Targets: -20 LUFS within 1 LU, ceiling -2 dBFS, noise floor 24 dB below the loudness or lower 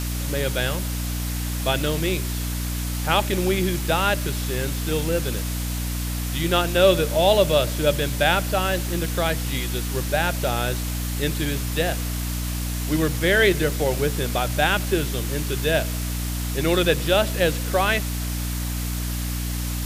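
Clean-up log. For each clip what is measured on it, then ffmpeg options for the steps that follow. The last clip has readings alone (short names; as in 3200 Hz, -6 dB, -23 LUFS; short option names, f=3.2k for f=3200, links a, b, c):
hum 60 Hz; harmonics up to 300 Hz; hum level -25 dBFS; noise floor -27 dBFS; noise floor target -47 dBFS; loudness -23.0 LUFS; peak -4.5 dBFS; loudness target -20.0 LUFS
-> -af "bandreject=f=60:t=h:w=6,bandreject=f=120:t=h:w=6,bandreject=f=180:t=h:w=6,bandreject=f=240:t=h:w=6,bandreject=f=300:t=h:w=6"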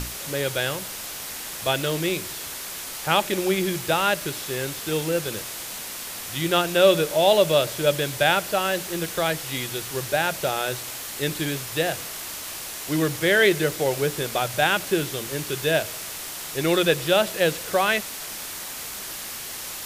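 hum none; noise floor -35 dBFS; noise floor target -48 dBFS
-> -af "afftdn=nr=13:nf=-35"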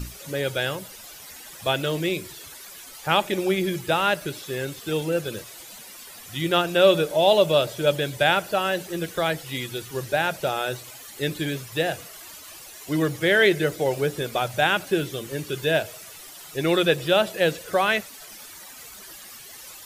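noise floor -43 dBFS; noise floor target -48 dBFS
-> -af "afftdn=nr=6:nf=-43"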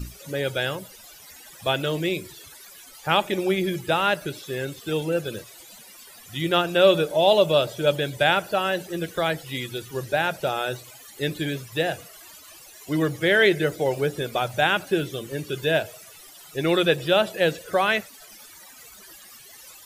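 noise floor -47 dBFS; noise floor target -48 dBFS
-> -af "afftdn=nr=6:nf=-47"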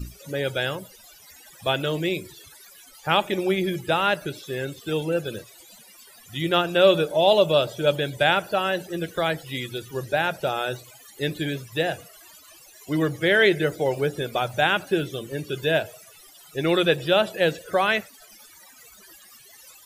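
noise floor -50 dBFS; loudness -23.5 LUFS; peak -4.5 dBFS; loudness target -20.0 LUFS
-> -af "volume=3.5dB,alimiter=limit=-2dB:level=0:latency=1"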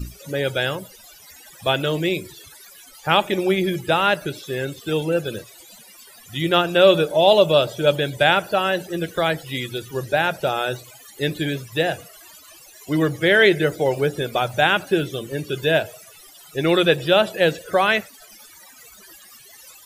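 loudness -20.0 LUFS; peak -2.0 dBFS; noise floor -47 dBFS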